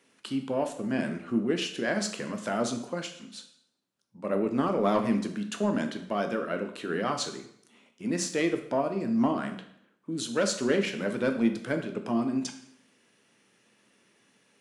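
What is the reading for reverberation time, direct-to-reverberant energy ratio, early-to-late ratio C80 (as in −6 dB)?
0.70 s, 5.5 dB, 12.5 dB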